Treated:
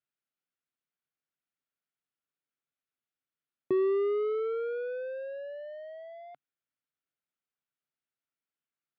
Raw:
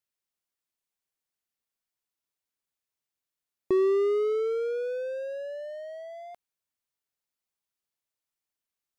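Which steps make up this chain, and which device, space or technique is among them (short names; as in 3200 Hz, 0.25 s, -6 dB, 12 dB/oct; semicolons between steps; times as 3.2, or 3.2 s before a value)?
guitar cabinet (speaker cabinet 110–3500 Hz, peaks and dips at 140 Hz +8 dB, 270 Hz +5 dB, 960 Hz -5 dB, 1400 Hz +6 dB); gain -4 dB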